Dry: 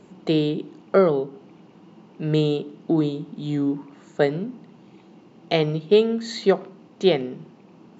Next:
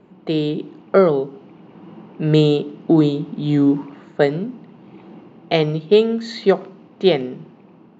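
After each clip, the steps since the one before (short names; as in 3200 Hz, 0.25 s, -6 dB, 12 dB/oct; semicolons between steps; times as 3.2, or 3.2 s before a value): low-pass opened by the level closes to 2500 Hz, open at -14 dBFS; AGC gain up to 11 dB; gain -1 dB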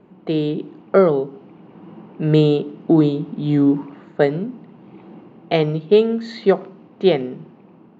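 high shelf 4800 Hz -11.5 dB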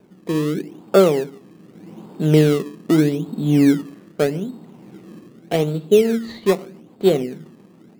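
rotary speaker horn 0.8 Hz, later 7 Hz, at 5.57; in parallel at -4 dB: decimation with a swept rate 21×, swing 100% 0.82 Hz; on the sum: gain -2.5 dB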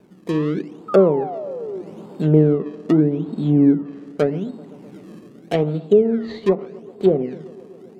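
painted sound fall, 0.88–1.82, 350–1300 Hz -29 dBFS; band-limited delay 0.128 s, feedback 81%, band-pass 510 Hz, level -22 dB; treble ducked by the level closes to 780 Hz, closed at -12 dBFS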